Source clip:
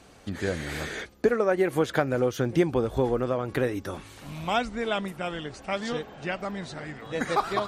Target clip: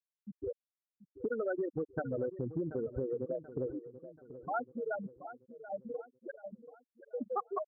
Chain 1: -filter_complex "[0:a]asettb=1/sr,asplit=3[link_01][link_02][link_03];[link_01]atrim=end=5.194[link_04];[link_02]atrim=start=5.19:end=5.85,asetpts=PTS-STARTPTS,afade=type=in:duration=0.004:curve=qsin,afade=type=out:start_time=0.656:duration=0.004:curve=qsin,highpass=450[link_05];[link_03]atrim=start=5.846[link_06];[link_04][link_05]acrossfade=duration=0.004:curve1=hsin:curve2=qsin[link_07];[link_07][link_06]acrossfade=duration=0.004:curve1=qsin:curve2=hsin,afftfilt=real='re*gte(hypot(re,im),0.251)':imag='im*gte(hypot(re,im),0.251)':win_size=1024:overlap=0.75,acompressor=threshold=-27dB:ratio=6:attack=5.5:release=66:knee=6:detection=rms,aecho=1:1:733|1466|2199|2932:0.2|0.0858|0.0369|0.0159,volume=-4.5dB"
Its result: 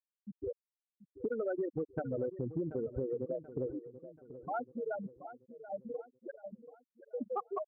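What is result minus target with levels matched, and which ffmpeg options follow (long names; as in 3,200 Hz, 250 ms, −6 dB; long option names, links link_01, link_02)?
2,000 Hz band −5.0 dB
-filter_complex "[0:a]asettb=1/sr,asplit=3[link_01][link_02][link_03];[link_01]atrim=end=5.194[link_04];[link_02]atrim=start=5.19:end=5.85,asetpts=PTS-STARTPTS,afade=type=in:duration=0.004:curve=qsin,afade=type=out:start_time=0.656:duration=0.004:curve=qsin,highpass=450[link_05];[link_03]atrim=start=5.846[link_06];[link_04][link_05]acrossfade=duration=0.004:curve1=hsin:curve2=qsin[link_07];[link_07][link_06]acrossfade=duration=0.004:curve1=qsin:curve2=hsin,afftfilt=real='re*gte(hypot(re,im),0.251)':imag='im*gte(hypot(re,im),0.251)':win_size=1024:overlap=0.75,acompressor=threshold=-27dB:ratio=6:attack=5.5:release=66:knee=6:detection=rms,highshelf=frequency=2000:width_type=q:width=3:gain=-7,aecho=1:1:733|1466|2199|2932:0.2|0.0858|0.0369|0.0159,volume=-4.5dB"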